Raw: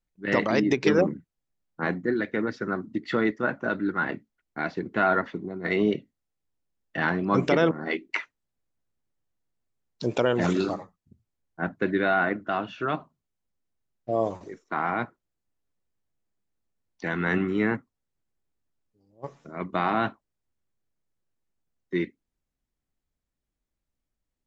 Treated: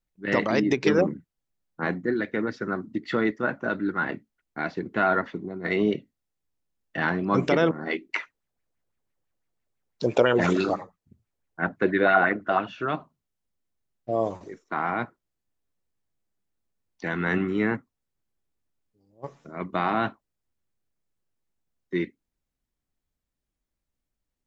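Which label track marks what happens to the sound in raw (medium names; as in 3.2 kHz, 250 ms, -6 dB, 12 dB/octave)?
8.200000	12.680000	sweeping bell 6 Hz 420–2400 Hz +10 dB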